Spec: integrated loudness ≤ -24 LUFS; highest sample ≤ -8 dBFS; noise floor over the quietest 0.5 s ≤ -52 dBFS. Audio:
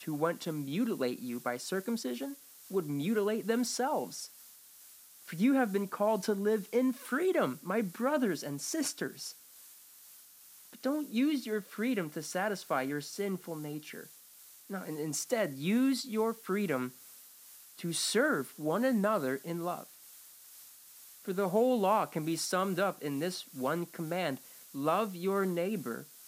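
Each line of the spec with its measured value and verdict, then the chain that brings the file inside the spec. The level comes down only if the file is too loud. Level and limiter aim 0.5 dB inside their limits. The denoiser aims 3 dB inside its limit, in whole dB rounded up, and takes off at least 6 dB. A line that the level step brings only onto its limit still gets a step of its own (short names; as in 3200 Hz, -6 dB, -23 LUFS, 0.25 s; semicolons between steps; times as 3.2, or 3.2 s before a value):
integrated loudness -33.0 LUFS: OK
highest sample -16.0 dBFS: OK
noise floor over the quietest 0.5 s -56 dBFS: OK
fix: none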